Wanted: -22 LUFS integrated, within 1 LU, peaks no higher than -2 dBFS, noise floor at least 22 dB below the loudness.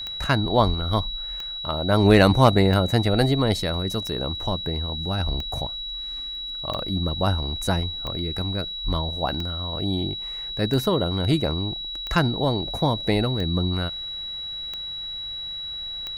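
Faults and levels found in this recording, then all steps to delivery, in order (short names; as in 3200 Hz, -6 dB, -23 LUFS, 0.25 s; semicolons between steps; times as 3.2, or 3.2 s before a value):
clicks 13; steady tone 3900 Hz; tone level -30 dBFS; loudness -24.0 LUFS; peak -5.0 dBFS; loudness target -22.0 LUFS
-> de-click; notch 3900 Hz, Q 30; gain +2 dB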